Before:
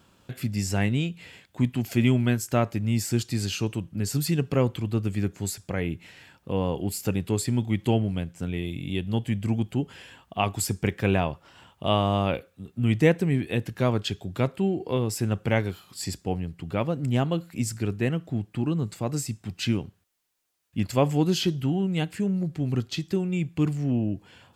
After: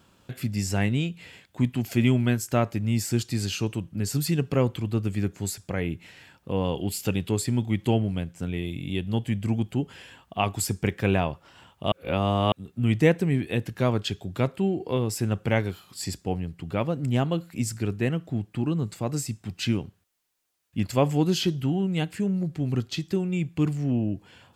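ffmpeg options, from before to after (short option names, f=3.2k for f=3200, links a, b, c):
-filter_complex "[0:a]asettb=1/sr,asplit=3[a][b][c];[a]atrim=end=6.644[d];[b]atrim=start=6.64:end=7.3,asetpts=PTS-STARTPTS,afade=t=in:d=0.004:c=qsin,afade=t=out:st=0.656:d=0.004:c=qsin,equalizer=f=3.2k:t=o:w=0.67:g=7.5[e];[c]atrim=start=7.296[f];[d][e]acrossfade=d=0.004:c1=hsin:c2=qsin[g];[g][f]acrossfade=d=0.004:c1=qsin:c2=hsin,asplit=3[h][i][j];[h]atrim=end=11.922[k];[i]atrim=start=11.918:end=12.522,asetpts=PTS-STARTPTS,areverse[l];[j]atrim=start=12.518[m];[k][l]acrossfade=d=0.004:c1=hsin:c2=hsin[n];[n][m]acrossfade=d=0.004:c1=hsin:c2=hsin"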